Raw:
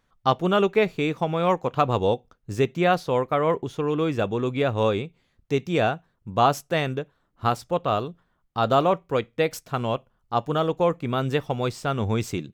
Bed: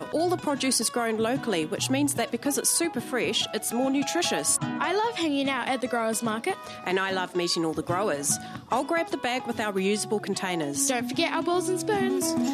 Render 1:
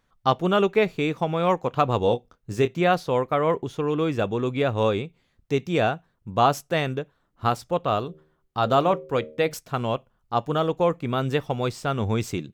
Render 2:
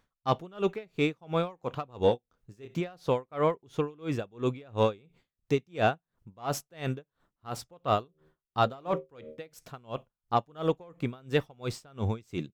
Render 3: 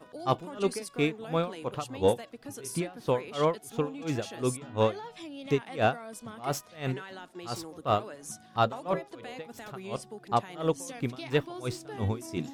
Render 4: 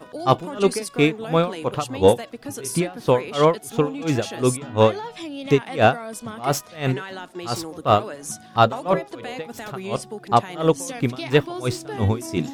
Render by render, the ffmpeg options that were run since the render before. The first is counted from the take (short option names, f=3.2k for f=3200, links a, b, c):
-filter_complex "[0:a]asettb=1/sr,asplit=3[a][b][c];[a]atrim=end=2.004[d];[b]atrim=start=2:end=2.81,asetpts=PTS-STARTPTS,afade=t=in:d=0.004:c=qsin,afade=t=out:st=0.806:d=0.004:c=qsin,asplit=2[e][f];[f]adelay=25,volume=-10dB[g];[e][g]amix=inputs=2:normalize=0,atrim=end_sample=35721[h];[c]atrim=start=2.806[i];[d][h]acrossfade=d=0.004:c1=hsin:c2=qsin[j];[j][i]acrossfade=d=0.004:c1=qsin:c2=hsin,asettb=1/sr,asplit=3[k][l][m];[k]atrim=end=8.014[n];[l]atrim=start=8.01:end=9.54,asetpts=PTS-STARTPTS,afade=t=in:d=0.004:c=qsin,afade=t=out:st=1.526:d=0.004:c=qsin,bandreject=f=77:t=h:w=4,bandreject=f=154:t=h:w=4,bandreject=f=231:t=h:w=4,bandreject=f=308:t=h:w=4,bandreject=f=385:t=h:w=4,bandreject=f=462:t=h:w=4,bandreject=f=539:t=h:w=4,bandreject=f=616:t=h:w=4[o];[m]atrim=start=9.536[p];[n][o]acrossfade=d=0.004:c1=hsin:c2=qsin[q];[q][p]acrossfade=d=0.004:c1=qsin:c2=hsin"
-af "asoftclip=type=tanh:threshold=-9.5dB,aeval=exprs='val(0)*pow(10,-30*(0.5-0.5*cos(2*PI*2.9*n/s))/20)':c=same"
-filter_complex "[1:a]volume=-16.5dB[a];[0:a][a]amix=inputs=2:normalize=0"
-af "volume=9.5dB"